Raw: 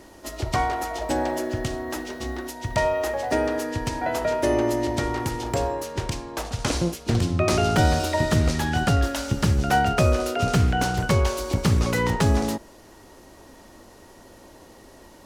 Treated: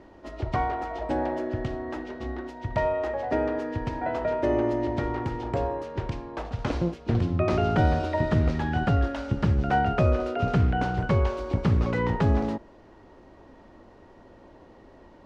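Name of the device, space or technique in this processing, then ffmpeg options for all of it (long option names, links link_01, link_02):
phone in a pocket: -af "lowpass=3500,highshelf=frequency=2200:gain=-9,volume=-2dB"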